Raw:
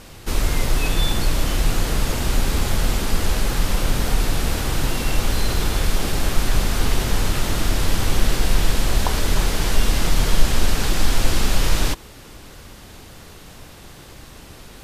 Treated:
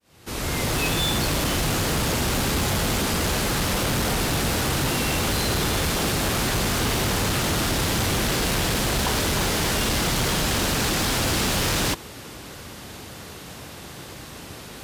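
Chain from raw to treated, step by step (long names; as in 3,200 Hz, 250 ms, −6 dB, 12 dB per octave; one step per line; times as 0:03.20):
fade in at the beginning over 0.80 s
high-pass filter 85 Hz 12 dB per octave
gain into a clipping stage and back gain 23.5 dB
level +4 dB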